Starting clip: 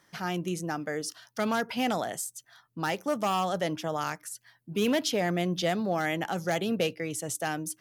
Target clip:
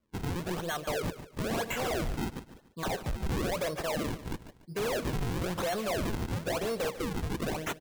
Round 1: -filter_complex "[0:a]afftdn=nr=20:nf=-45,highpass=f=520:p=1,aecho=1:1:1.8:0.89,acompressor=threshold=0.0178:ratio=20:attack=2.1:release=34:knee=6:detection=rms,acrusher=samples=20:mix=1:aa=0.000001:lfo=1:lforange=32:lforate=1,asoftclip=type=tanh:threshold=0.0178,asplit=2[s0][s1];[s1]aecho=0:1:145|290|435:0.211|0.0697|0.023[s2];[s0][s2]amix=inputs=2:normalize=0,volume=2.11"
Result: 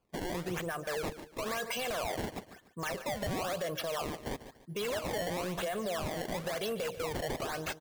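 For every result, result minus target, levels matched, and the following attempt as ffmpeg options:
compression: peak gain reduction +10 dB; decimation with a swept rate: distortion -8 dB
-filter_complex "[0:a]afftdn=nr=20:nf=-45,highpass=f=520:p=1,aecho=1:1:1.8:0.89,acompressor=threshold=0.0596:ratio=20:attack=2.1:release=34:knee=6:detection=rms,acrusher=samples=20:mix=1:aa=0.000001:lfo=1:lforange=32:lforate=1,asoftclip=type=tanh:threshold=0.0178,asplit=2[s0][s1];[s1]aecho=0:1:145|290|435:0.211|0.0697|0.023[s2];[s0][s2]amix=inputs=2:normalize=0,volume=2.11"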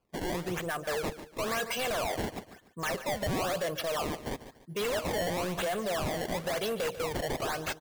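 decimation with a swept rate: distortion -8 dB
-filter_complex "[0:a]afftdn=nr=20:nf=-45,highpass=f=520:p=1,aecho=1:1:1.8:0.89,acompressor=threshold=0.0596:ratio=20:attack=2.1:release=34:knee=6:detection=rms,acrusher=samples=43:mix=1:aa=0.000001:lfo=1:lforange=68.8:lforate=1,asoftclip=type=tanh:threshold=0.0178,asplit=2[s0][s1];[s1]aecho=0:1:145|290|435:0.211|0.0697|0.023[s2];[s0][s2]amix=inputs=2:normalize=0,volume=2.11"

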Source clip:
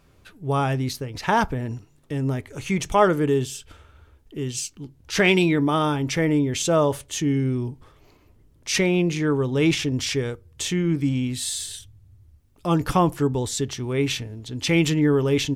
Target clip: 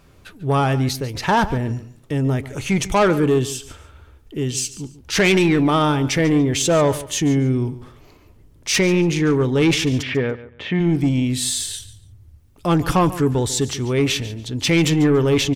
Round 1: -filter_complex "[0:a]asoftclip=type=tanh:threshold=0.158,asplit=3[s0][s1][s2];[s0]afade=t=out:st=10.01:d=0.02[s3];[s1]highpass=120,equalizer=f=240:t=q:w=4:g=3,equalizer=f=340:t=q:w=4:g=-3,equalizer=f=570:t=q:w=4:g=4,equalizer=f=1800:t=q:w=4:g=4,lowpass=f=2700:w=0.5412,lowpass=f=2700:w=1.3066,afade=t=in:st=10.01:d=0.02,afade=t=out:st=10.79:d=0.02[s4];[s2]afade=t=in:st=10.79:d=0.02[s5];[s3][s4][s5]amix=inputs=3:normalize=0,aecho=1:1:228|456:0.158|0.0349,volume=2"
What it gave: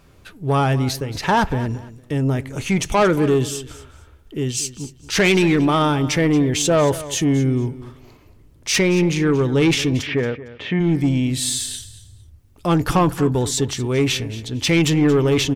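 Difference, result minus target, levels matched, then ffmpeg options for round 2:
echo 85 ms late
-filter_complex "[0:a]asoftclip=type=tanh:threshold=0.158,asplit=3[s0][s1][s2];[s0]afade=t=out:st=10.01:d=0.02[s3];[s1]highpass=120,equalizer=f=240:t=q:w=4:g=3,equalizer=f=340:t=q:w=4:g=-3,equalizer=f=570:t=q:w=4:g=4,equalizer=f=1800:t=q:w=4:g=4,lowpass=f=2700:w=0.5412,lowpass=f=2700:w=1.3066,afade=t=in:st=10.01:d=0.02,afade=t=out:st=10.79:d=0.02[s4];[s2]afade=t=in:st=10.79:d=0.02[s5];[s3][s4][s5]amix=inputs=3:normalize=0,aecho=1:1:143|286:0.158|0.0349,volume=2"

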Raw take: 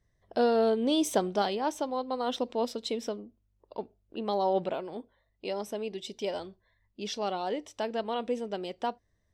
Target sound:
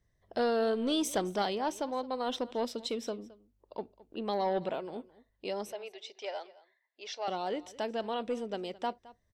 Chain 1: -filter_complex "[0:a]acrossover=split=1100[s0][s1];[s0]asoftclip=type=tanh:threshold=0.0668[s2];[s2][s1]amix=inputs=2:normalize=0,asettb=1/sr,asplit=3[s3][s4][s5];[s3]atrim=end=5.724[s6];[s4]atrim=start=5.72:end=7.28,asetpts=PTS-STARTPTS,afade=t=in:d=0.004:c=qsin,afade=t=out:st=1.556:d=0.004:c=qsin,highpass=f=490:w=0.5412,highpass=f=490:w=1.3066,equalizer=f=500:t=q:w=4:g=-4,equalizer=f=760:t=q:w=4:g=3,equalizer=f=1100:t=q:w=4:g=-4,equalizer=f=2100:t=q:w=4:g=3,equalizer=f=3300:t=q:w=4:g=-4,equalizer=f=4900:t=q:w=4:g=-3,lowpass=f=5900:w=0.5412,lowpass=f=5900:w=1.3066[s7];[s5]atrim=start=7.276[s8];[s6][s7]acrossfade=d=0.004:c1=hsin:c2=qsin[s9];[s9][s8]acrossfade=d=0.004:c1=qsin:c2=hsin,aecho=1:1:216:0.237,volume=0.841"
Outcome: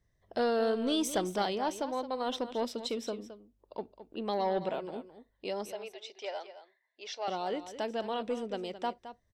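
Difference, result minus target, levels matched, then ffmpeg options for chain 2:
echo-to-direct +7.5 dB
-filter_complex "[0:a]acrossover=split=1100[s0][s1];[s0]asoftclip=type=tanh:threshold=0.0668[s2];[s2][s1]amix=inputs=2:normalize=0,asettb=1/sr,asplit=3[s3][s4][s5];[s3]atrim=end=5.724[s6];[s4]atrim=start=5.72:end=7.28,asetpts=PTS-STARTPTS,afade=t=in:d=0.004:c=qsin,afade=t=out:st=1.556:d=0.004:c=qsin,highpass=f=490:w=0.5412,highpass=f=490:w=1.3066,equalizer=f=500:t=q:w=4:g=-4,equalizer=f=760:t=q:w=4:g=3,equalizer=f=1100:t=q:w=4:g=-4,equalizer=f=2100:t=q:w=4:g=3,equalizer=f=3300:t=q:w=4:g=-4,equalizer=f=4900:t=q:w=4:g=-3,lowpass=f=5900:w=0.5412,lowpass=f=5900:w=1.3066[s7];[s5]atrim=start=7.276[s8];[s6][s7]acrossfade=d=0.004:c1=hsin:c2=qsin[s9];[s9][s8]acrossfade=d=0.004:c1=qsin:c2=hsin,aecho=1:1:216:0.1,volume=0.841"

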